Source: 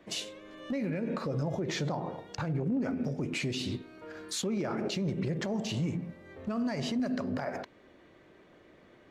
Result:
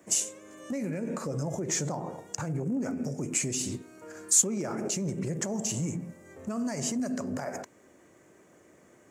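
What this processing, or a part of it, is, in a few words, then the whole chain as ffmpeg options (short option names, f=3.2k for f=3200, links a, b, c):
budget condenser microphone: -af "highpass=81,highshelf=f=5.3k:t=q:w=3:g=12"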